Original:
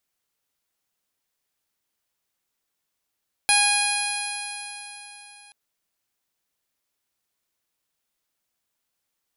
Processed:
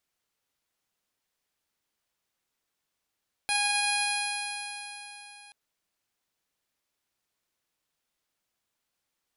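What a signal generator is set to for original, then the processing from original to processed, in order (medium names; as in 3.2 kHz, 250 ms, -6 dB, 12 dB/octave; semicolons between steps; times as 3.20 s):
stretched partials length 2.03 s, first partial 820 Hz, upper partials -3/2.5/-4/0/-7/-13/-15/-11/-13.5/-10/3.5 dB, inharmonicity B 0.00073, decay 3.68 s, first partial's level -23 dB
treble shelf 8.5 kHz -7 dB; peak limiter -18.5 dBFS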